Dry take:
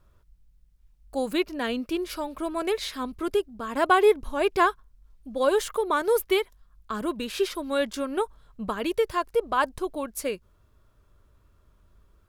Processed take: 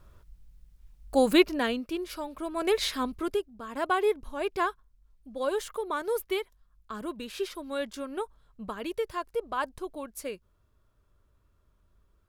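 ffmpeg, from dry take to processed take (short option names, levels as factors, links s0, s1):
-af "volume=4.73,afade=t=out:st=1.39:d=0.42:silence=0.316228,afade=t=in:st=2.52:d=0.32:silence=0.398107,afade=t=out:st=2.84:d=0.61:silence=0.298538"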